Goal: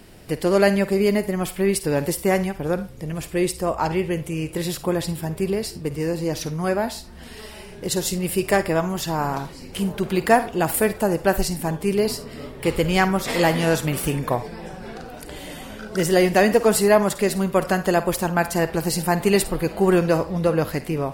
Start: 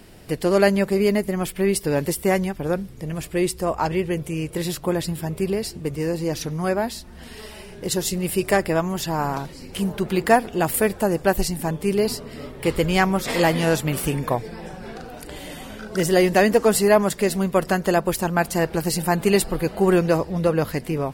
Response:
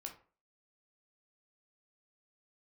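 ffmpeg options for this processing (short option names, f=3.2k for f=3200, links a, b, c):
-filter_complex "[0:a]asplit=2[a][b];[b]highpass=530[c];[1:a]atrim=start_sample=2205,adelay=52[d];[c][d]afir=irnorm=-1:irlink=0,volume=-8dB[e];[a][e]amix=inputs=2:normalize=0"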